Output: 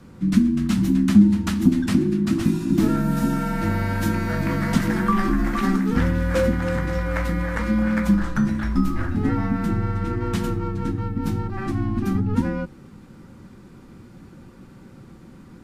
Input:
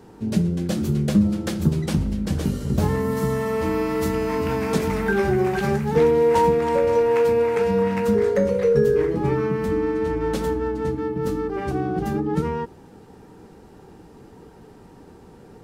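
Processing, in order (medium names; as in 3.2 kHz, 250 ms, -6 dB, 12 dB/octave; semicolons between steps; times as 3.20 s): graphic EQ 250/500/2000 Hz +8/-10/+7 dB; frequency shift -410 Hz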